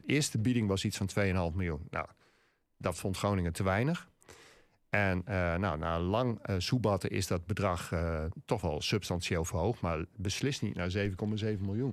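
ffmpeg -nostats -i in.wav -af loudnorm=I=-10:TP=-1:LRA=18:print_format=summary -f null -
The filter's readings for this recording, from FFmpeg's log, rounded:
Input Integrated:    -33.2 LUFS
Input True Peak:     -12.4 dBTP
Input LRA:             1.3 LU
Input Threshold:     -43.5 LUFS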